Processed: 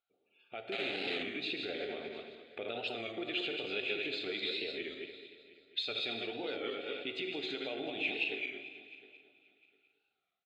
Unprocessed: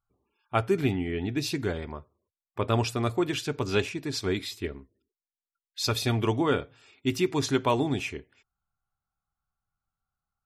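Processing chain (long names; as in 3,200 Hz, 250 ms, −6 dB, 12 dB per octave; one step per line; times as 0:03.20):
feedback delay that plays each chunk backwards 110 ms, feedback 48%, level −6 dB
downward compressor 6 to 1, threshold −39 dBFS, peak gain reduction 18.5 dB
brickwall limiter −34 dBFS, peak gain reduction 10.5 dB
automatic gain control gain up to 6 dB
0:00.72–0:01.24: bit-depth reduction 6 bits, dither none
loudspeaker in its box 480–4,800 Hz, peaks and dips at 490 Hz +4 dB, 720 Hz +6 dB, 1,100 Hz −3 dB, 1,700 Hz −6 dB, 2,500 Hz +4 dB, 3,800 Hz +8 dB
phaser with its sweep stopped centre 2,400 Hz, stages 4
repeating echo 704 ms, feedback 20%, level −19.5 dB
reverb whose tail is shaped and stops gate 240 ms flat, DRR 6.5 dB
wow of a warped record 33 1/3 rpm, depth 100 cents
level +4 dB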